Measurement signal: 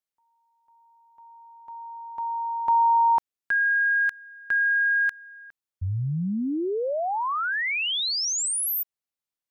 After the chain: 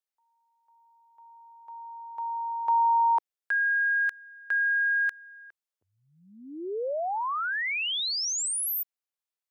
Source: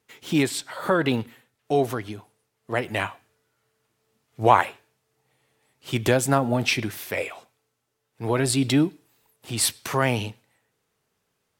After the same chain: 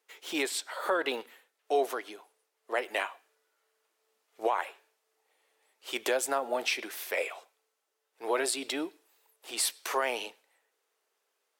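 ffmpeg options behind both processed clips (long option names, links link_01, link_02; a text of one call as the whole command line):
ffmpeg -i in.wav -af "highpass=frequency=400:width=0.5412,highpass=frequency=400:width=1.3066,alimiter=limit=-14dB:level=0:latency=1:release=249,volume=-3dB" out.wav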